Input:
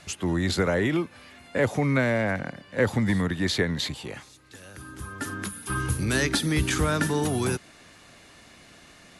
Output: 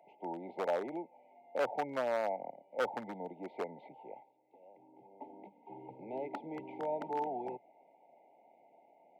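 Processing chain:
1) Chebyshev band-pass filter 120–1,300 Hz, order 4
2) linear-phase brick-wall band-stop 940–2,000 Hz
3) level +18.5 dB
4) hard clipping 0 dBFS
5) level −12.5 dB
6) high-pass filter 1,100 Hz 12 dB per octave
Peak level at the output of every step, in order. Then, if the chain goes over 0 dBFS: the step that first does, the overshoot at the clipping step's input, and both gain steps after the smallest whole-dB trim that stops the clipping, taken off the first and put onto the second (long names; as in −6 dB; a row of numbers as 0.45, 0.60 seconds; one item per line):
−12.5, −13.5, +5.0, 0.0, −12.5, −22.5 dBFS
step 3, 5.0 dB
step 3 +13.5 dB, step 5 −7.5 dB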